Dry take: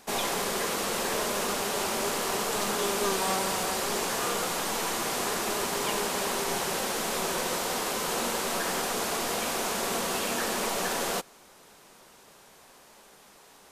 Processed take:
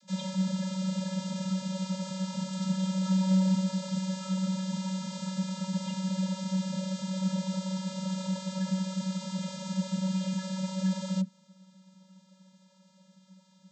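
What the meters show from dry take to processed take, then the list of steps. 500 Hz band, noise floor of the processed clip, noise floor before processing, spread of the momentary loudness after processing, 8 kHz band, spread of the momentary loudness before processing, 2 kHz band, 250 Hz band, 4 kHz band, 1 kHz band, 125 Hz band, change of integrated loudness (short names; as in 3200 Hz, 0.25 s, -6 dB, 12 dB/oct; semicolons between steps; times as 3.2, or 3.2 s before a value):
-11.5 dB, -62 dBFS, -55 dBFS, 6 LU, -13.0 dB, 2 LU, -16.5 dB, +8.5 dB, -9.5 dB, -14.0 dB, +13.0 dB, -3.5 dB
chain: band shelf 1100 Hz -12 dB 2.7 oct; vocoder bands 32, square 188 Hz; gain +4.5 dB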